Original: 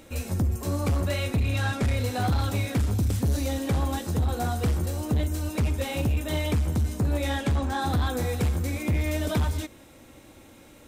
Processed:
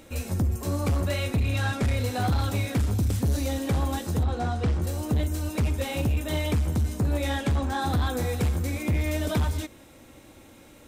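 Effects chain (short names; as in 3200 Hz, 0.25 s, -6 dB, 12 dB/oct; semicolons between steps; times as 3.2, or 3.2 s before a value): 4.23–4.82 air absorption 97 m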